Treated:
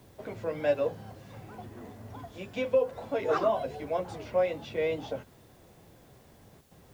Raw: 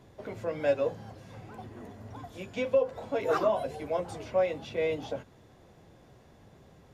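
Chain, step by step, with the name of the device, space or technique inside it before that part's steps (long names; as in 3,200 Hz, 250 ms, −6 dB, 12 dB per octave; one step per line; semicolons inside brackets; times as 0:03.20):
worn cassette (low-pass filter 6,300 Hz; tape wow and flutter; tape dropouts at 0:06.61, 101 ms −11 dB; white noise bed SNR 34 dB)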